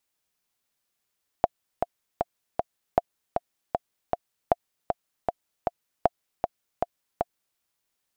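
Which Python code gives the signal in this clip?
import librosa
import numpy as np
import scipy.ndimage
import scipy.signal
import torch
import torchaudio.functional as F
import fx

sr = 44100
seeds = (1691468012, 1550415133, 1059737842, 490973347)

y = fx.click_track(sr, bpm=156, beats=4, bars=4, hz=697.0, accent_db=5.5, level_db=-5.0)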